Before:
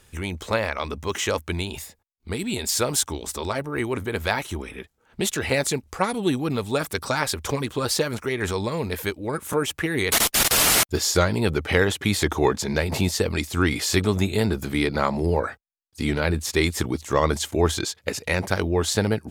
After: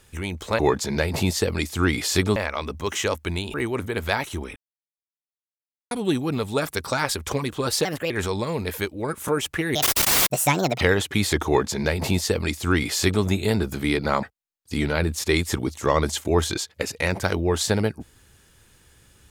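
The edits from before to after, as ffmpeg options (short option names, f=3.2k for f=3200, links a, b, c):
-filter_complex "[0:a]asplit=11[a][b][c][d][e][f][g][h][i][j][k];[a]atrim=end=0.592[l];[b]atrim=start=12.368:end=14.142[m];[c]atrim=start=0.588:end=1.772[n];[d]atrim=start=3.718:end=4.74,asetpts=PTS-STARTPTS,afade=t=out:st=1.018:d=0.004:c=hsin[o];[e]atrim=start=4.74:end=6.09,asetpts=PTS-STARTPTS,volume=0[p];[f]atrim=start=6.09:end=8.034,asetpts=PTS-STARTPTS,afade=t=in:d=0.004:c=hsin[q];[g]atrim=start=8.03:end=8.35,asetpts=PTS-STARTPTS,asetrate=56007,aresample=44100[r];[h]atrim=start=8.346:end=10.004[s];[i]atrim=start=10:end=11.71,asetpts=PTS-STARTPTS,asetrate=71442,aresample=44100[t];[j]atrim=start=11.706:end=15.132[u];[k]atrim=start=15.498[v];[l][m]acrossfade=d=0.004:c1=hsin:c2=hsin[w];[w][n]acrossfade=d=0.004:c1=hsin:c2=hsin[x];[o][p][q]concat=n=3:v=0:a=1[y];[x][y]acrossfade=d=0.004:c1=hsin:c2=hsin[z];[z][r]acrossfade=d=0.004:c1=hsin:c2=hsin[aa];[aa][s]acrossfade=d=0.004:c1=hsin:c2=hsin[ab];[ab][t]acrossfade=d=0.004:c1=hsin:c2=hsin[ac];[ac][u]acrossfade=d=0.004:c1=hsin:c2=hsin[ad];[ad][v]acrossfade=d=0.004:c1=hsin:c2=hsin"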